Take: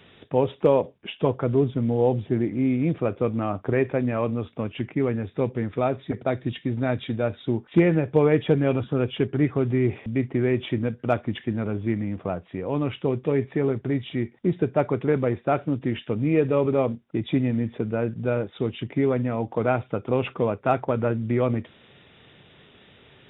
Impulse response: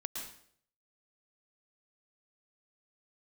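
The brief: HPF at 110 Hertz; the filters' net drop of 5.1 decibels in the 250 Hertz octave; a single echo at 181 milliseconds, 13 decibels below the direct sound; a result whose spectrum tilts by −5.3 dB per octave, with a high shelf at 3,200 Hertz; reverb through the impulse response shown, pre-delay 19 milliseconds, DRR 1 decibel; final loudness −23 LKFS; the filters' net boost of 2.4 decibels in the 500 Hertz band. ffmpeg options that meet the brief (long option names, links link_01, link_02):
-filter_complex "[0:a]highpass=110,equalizer=frequency=250:width_type=o:gain=-8.5,equalizer=frequency=500:width_type=o:gain=5.5,highshelf=frequency=3200:gain=-6,aecho=1:1:181:0.224,asplit=2[link_01][link_02];[1:a]atrim=start_sample=2205,adelay=19[link_03];[link_02][link_03]afir=irnorm=-1:irlink=0,volume=-1dB[link_04];[link_01][link_04]amix=inputs=2:normalize=0,volume=-0.5dB"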